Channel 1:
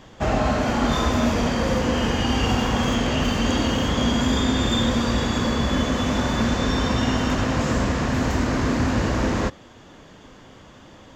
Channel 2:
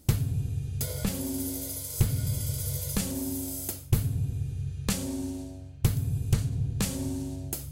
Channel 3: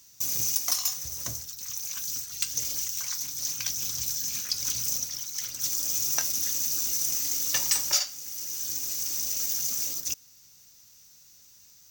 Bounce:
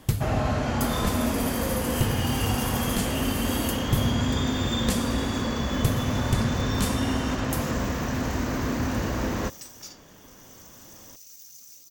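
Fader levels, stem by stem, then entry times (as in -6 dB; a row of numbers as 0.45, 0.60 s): -5.5, 0.0, -18.5 dB; 0.00, 0.00, 1.90 s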